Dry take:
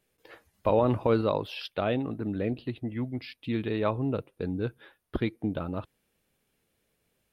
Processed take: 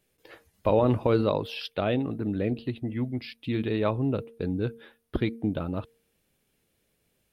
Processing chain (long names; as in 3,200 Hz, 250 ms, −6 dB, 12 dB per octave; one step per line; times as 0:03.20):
parametric band 1,100 Hz −3.5 dB 1.9 octaves
hum removal 230.1 Hz, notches 2
level +3 dB